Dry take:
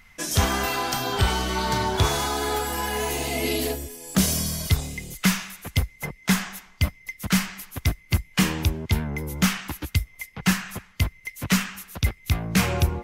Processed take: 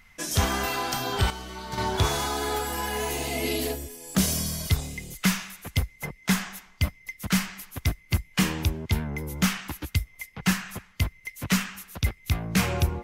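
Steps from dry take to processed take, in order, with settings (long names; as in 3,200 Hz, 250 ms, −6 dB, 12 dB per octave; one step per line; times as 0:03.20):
0:01.30–0:01.78: noise gate −21 dBFS, range −10 dB
level −2.5 dB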